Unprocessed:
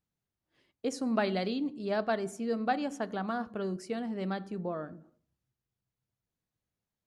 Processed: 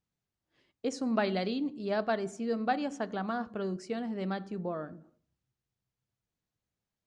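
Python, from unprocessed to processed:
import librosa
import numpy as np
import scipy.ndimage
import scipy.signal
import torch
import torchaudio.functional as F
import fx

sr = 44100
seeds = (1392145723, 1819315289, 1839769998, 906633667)

y = scipy.signal.sosfilt(scipy.signal.butter(4, 8000.0, 'lowpass', fs=sr, output='sos'), x)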